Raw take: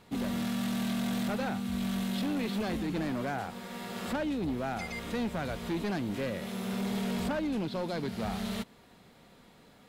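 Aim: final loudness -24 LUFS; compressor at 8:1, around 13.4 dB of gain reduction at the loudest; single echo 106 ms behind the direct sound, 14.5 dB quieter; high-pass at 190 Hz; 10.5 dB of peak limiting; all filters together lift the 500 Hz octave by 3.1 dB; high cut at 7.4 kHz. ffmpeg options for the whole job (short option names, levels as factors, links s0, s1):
-af "highpass=190,lowpass=7400,equalizer=f=500:t=o:g=4,acompressor=threshold=0.00794:ratio=8,alimiter=level_in=8.41:limit=0.0631:level=0:latency=1,volume=0.119,aecho=1:1:106:0.188,volume=21.1"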